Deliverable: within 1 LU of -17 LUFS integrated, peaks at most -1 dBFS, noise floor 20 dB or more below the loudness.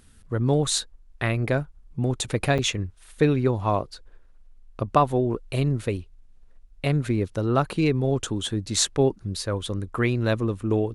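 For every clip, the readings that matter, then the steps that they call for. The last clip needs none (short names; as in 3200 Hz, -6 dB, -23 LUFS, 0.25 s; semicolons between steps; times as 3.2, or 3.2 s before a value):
dropouts 1; longest dropout 6.9 ms; loudness -25.0 LUFS; peak -4.5 dBFS; loudness target -17.0 LUFS
-> interpolate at 2.58, 6.9 ms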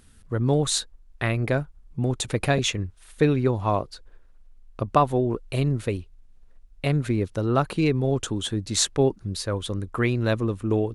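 dropouts 0; loudness -25.0 LUFS; peak -4.5 dBFS; loudness target -17.0 LUFS
-> gain +8 dB; limiter -1 dBFS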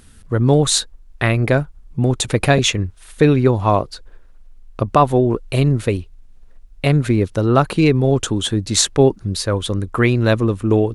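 loudness -17.0 LUFS; peak -1.0 dBFS; noise floor -45 dBFS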